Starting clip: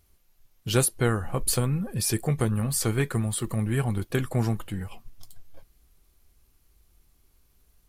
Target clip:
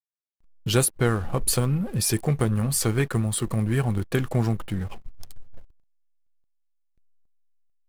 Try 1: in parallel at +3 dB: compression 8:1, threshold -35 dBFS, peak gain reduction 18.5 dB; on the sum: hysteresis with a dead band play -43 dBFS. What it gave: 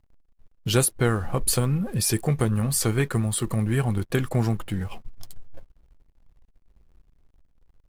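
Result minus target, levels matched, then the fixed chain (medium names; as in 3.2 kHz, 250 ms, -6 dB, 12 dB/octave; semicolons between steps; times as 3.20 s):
hysteresis with a dead band: distortion -6 dB
in parallel at +3 dB: compression 8:1, threshold -35 dBFS, peak gain reduction 18.5 dB; on the sum: hysteresis with a dead band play -36 dBFS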